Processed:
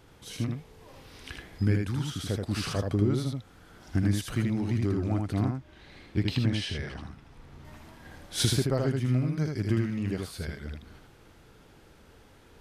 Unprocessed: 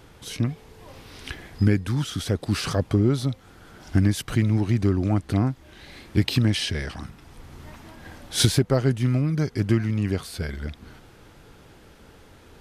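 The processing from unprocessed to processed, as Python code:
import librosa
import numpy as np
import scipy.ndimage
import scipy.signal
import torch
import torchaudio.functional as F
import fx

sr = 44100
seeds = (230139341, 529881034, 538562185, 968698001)

y = fx.high_shelf(x, sr, hz=7100.0, db=-12.0, at=(5.5, 7.65))
y = y + 10.0 ** (-3.5 / 20.0) * np.pad(y, (int(79 * sr / 1000.0), 0))[:len(y)]
y = y * 10.0 ** (-7.0 / 20.0)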